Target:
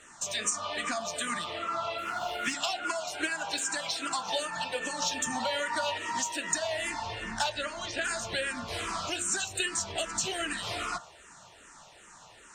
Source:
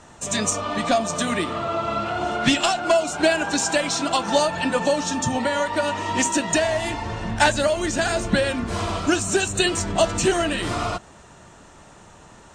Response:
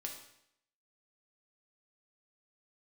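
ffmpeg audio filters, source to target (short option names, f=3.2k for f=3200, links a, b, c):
-filter_complex "[0:a]tiltshelf=f=630:g=-7.5,asettb=1/sr,asplit=3[a][b][c];[a]atrim=end=1.984[d];[b]atrim=start=1.98:end=2.53,asetpts=PTS-STARTPTS,afade=t=in:d=0.004:c=qsin,afade=t=out:st=0.546:d=0.004:c=qsin,aeval=exprs='sgn(val(0))*max(abs(val(0))-0.015,0)':c=same[e];[c]atrim=start=2.526[f];[d][e]acrossfade=d=0.004:c1=hsin:c2=qsin[g];[g][f]acrossfade=d=0.004:c1=qsin:c2=hsin,bandreject=f=69.9:t=h:w=4,bandreject=f=139.8:t=h:w=4,bandreject=f=209.7:t=h:w=4,bandreject=f=279.6:t=h:w=4,bandreject=f=349.5:t=h:w=4,bandreject=f=419.4:t=h:w=4,bandreject=f=489.3:t=h:w=4,bandreject=f=559.2:t=h:w=4,bandreject=f=629.1:t=h:w=4,bandreject=f=699:t=h:w=4,bandreject=f=768.9:t=h:w=4,bandreject=f=838.8:t=h:w=4,bandreject=f=908.7:t=h:w=4,bandreject=f=978.6:t=h:w=4,bandreject=f=1.0485k:t=h:w=4,bandreject=f=1.1184k:t=h:w=4,bandreject=f=1.1883k:t=h:w=4,bandreject=f=1.2582k:t=h:w=4,bandreject=f=1.3281k:t=h:w=4,bandreject=f=1.398k:t=h:w=4,bandreject=f=1.4679k:t=h:w=4,bandreject=f=1.5378k:t=h:w=4,bandreject=f=1.6077k:t=h:w=4,bandreject=f=1.6776k:t=h:w=4,bandreject=f=1.7475k:t=h:w=4,bandreject=f=1.8174k:t=h:w=4,bandreject=f=1.8873k:t=h:w=4,bandreject=f=1.9572k:t=h:w=4,bandreject=f=2.0271k:t=h:w=4,bandreject=f=2.097k:t=h:w=4,bandreject=f=2.1669k:t=h:w=4,asoftclip=type=tanh:threshold=-2dB,asettb=1/sr,asplit=3[h][i][j];[h]atrim=end=5.024[k];[i]atrim=start=5.02:end=5.98,asetpts=PTS-STARTPTS,afade=t=in:d=0.004:c=qsin,afade=t=out:st=0.956:d=0.004:c=qsin,acontrast=38[l];[j]atrim=start=5.976[m];[k][l]acrossfade=d=0.004:c1=hsin:c2=qsin[n];[n][m]acrossfade=d=0.004:c1=qsin:c2=hsin,asplit=3[o][p][q];[o]afade=t=out:st=7.49:d=0.02[r];[p]lowpass=5.2k,afade=t=in:st=7.49:d=0.02,afade=t=out:st=8.03:d=0.02[s];[q]afade=t=in:st=8.03:d=0.02[t];[r][s][t]amix=inputs=3:normalize=0,acompressor=threshold=-22dB:ratio=3,asplit=2[u][v];[v]afreqshift=-2.5[w];[u][w]amix=inputs=2:normalize=1,volume=-5dB"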